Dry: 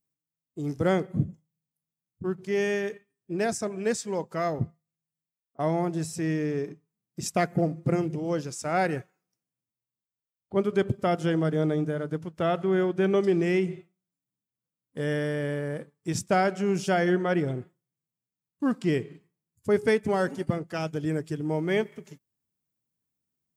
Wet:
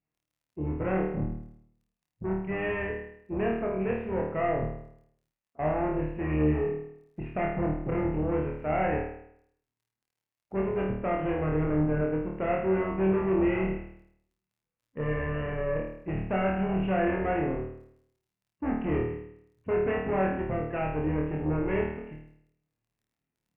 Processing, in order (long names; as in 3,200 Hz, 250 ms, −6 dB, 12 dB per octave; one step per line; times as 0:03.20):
sub-octave generator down 2 octaves, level −4 dB
high-pass filter 48 Hz
in parallel at +1 dB: brickwall limiter −20.5 dBFS, peak gain reduction 9.5 dB
on the sum: soft clipping −20.5 dBFS, distortion −11 dB
Chebyshev low-pass with heavy ripple 2,800 Hz, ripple 3 dB
surface crackle 20 per second −59 dBFS
tape wow and flutter 17 cents
flutter between parallel walls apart 4.5 metres, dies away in 0.69 s
level −4.5 dB